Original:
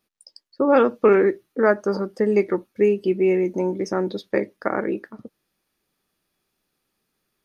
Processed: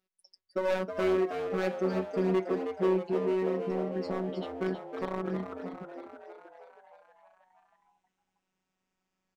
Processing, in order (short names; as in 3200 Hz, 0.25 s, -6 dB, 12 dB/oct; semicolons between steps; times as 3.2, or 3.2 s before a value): speed glide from 108% -> 51%; LPF 3400 Hz 6 dB/oct; hard clip -17.5 dBFS, distortion -9 dB; robotiser 187 Hz; frequency-shifting echo 0.318 s, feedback 62%, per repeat +79 Hz, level -8 dB; gain -5.5 dB